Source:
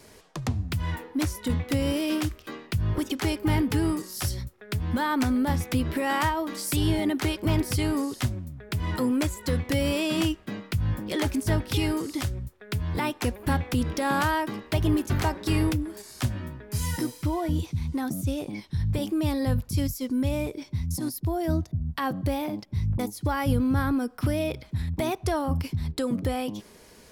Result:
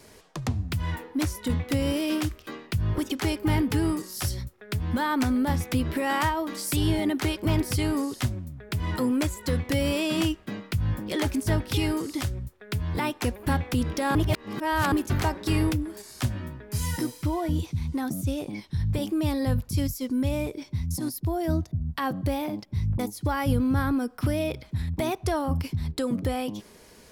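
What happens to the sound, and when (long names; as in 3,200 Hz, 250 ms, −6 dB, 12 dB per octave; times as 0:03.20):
0:14.15–0:14.92: reverse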